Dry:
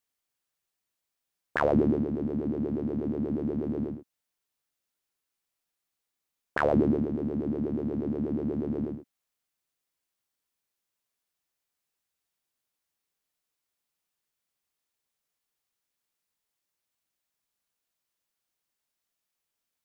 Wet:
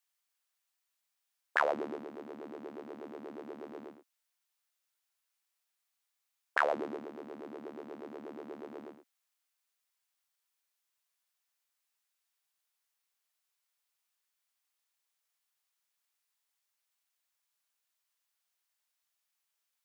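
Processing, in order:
high-pass filter 810 Hz 12 dB per octave
level +1 dB

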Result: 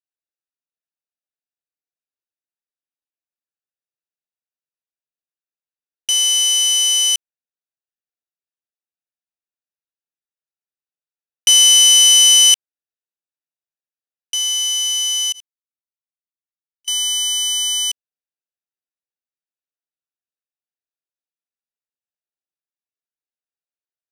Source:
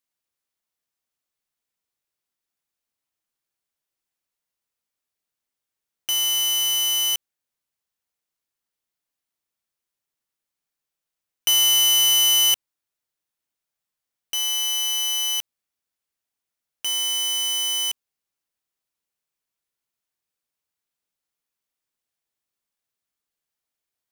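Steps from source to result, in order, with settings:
adaptive Wiener filter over 41 samples
0:15.32–0:16.88: noise gate −25 dBFS, range −35 dB
meter weighting curve ITU-R 468
level −1 dB

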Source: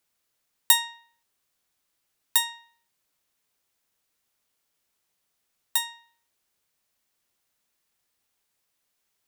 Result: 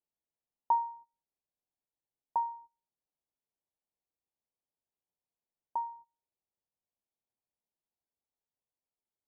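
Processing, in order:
noise gate −49 dBFS, range −19 dB
Butterworth low-pass 980 Hz 48 dB per octave
level +6 dB

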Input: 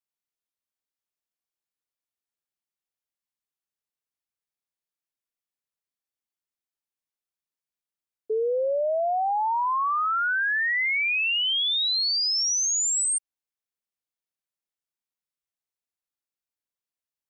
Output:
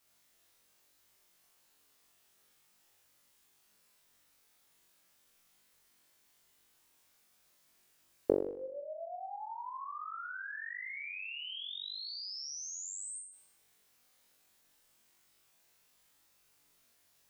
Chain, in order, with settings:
gate with flip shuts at −30 dBFS, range −41 dB
flutter between parallel walls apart 3.6 metres, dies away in 0.69 s
level +18 dB

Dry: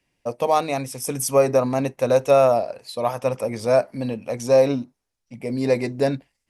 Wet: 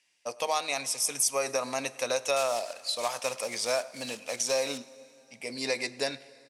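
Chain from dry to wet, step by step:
0:02.36–0:04.78: one scale factor per block 5 bits
meter weighting curve ITU-R 468
downward compressor 2.5 to 1, threshold −22 dBFS, peak gain reduction 8 dB
far-end echo of a speakerphone 100 ms, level −21 dB
dense smooth reverb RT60 3.1 s, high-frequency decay 0.85×, DRR 18.5 dB
level −4 dB

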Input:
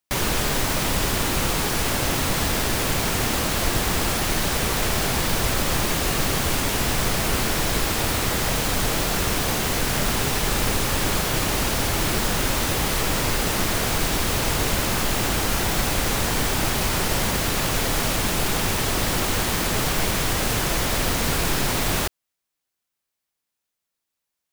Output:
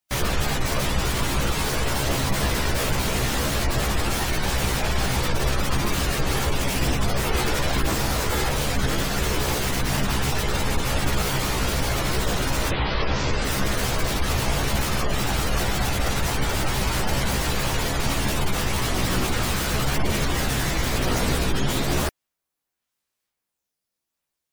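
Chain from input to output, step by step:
0:12.69–0:13.43: low-pass filter 3,800 Hz → 9,600 Hz 24 dB per octave
gate on every frequency bin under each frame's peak −25 dB strong
multi-voice chorus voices 4, 0.49 Hz, delay 15 ms, depth 1.2 ms
level +2 dB

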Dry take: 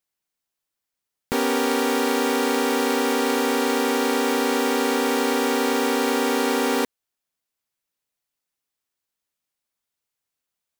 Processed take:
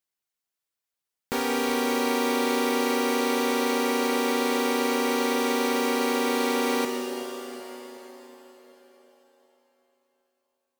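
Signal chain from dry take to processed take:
low-shelf EQ 220 Hz −4.5 dB
on a send: echo with a time of its own for lows and highs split 1,200 Hz, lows 373 ms, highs 122 ms, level −14 dB
on the sum: reverb reduction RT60 0.55 s
reverb with rising layers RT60 3.4 s, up +7 semitones, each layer −8 dB, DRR 4 dB
level −3.5 dB

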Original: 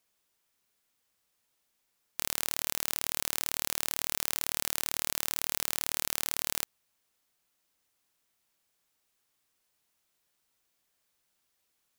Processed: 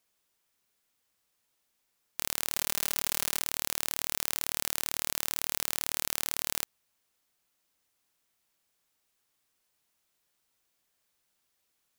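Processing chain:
0:02.55–0:03.43: comb filter 5 ms, depth 68%

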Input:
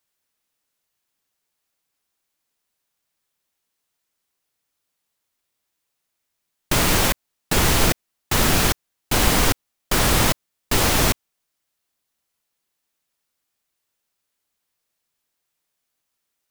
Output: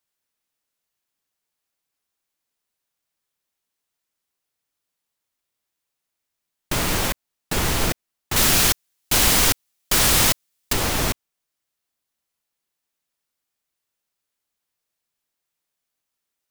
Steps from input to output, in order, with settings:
0:08.36–0:10.73: high-shelf EQ 2,100 Hz +9.5 dB
level −4 dB

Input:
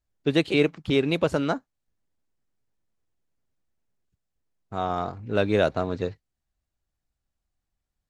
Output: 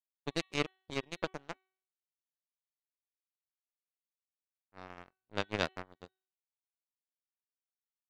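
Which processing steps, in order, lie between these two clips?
power curve on the samples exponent 3
hum removal 377 Hz, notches 11
transient designer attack +2 dB, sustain −7 dB
level −4 dB

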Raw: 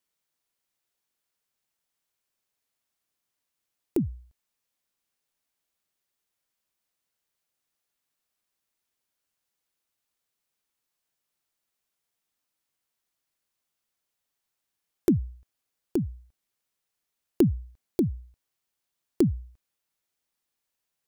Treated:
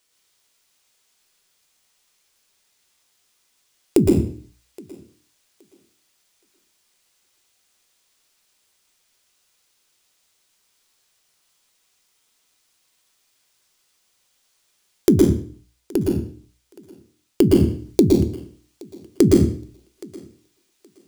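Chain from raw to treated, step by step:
running median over 3 samples
high-shelf EQ 2,900 Hz +11 dB
mains-hum notches 60/120/180/240/300/360/420 Hz
tuned comb filter 100 Hz, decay 0.16 s, harmonics all, mix 40%
feedback echo with a high-pass in the loop 821 ms, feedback 24%, high-pass 320 Hz, level −21 dB
convolution reverb RT60 0.45 s, pre-delay 112 ms, DRR −0.5 dB
speech leveller
parametric band 430 Hz +4 dB 0.49 octaves
boost into a limiter +12 dB
level −1 dB

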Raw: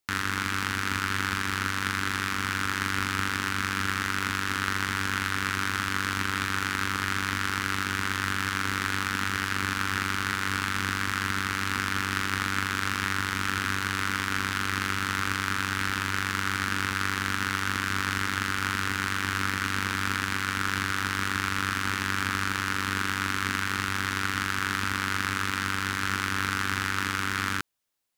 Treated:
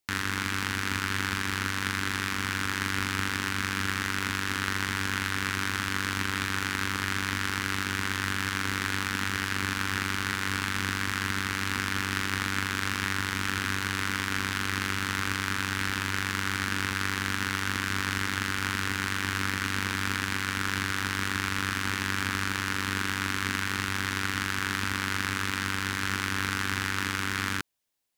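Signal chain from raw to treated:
parametric band 1,300 Hz −4.5 dB 0.43 octaves

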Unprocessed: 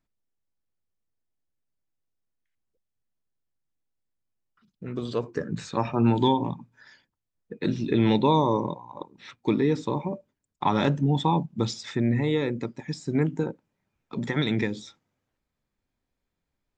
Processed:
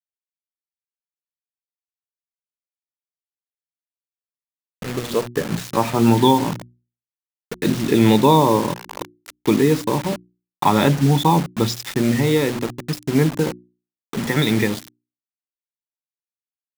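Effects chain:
bit-depth reduction 6 bits, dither none
mains-hum notches 60/120/180/240/300/360 Hz
level +7.5 dB

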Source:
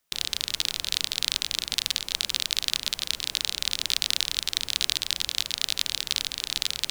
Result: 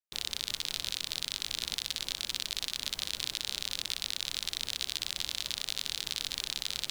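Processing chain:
noise gate with hold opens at −35 dBFS
brickwall limiter −9.5 dBFS, peak gain reduction 8.5 dB
on a send: flutter between parallel walls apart 10.7 metres, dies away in 0.36 s
on the sum: level −3 dB

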